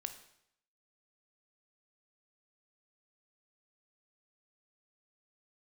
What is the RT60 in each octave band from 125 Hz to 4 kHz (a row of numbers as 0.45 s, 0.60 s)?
0.75 s, 0.70 s, 0.70 s, 0.75 s, 0.70 s, 0.70 s